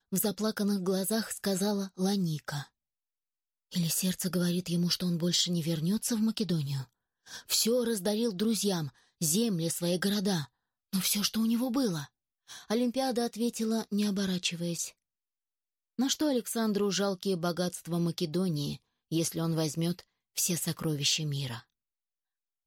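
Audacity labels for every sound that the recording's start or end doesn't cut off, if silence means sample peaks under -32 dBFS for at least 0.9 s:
3.750000	14.870000	sound
15.990000	21.560000	sound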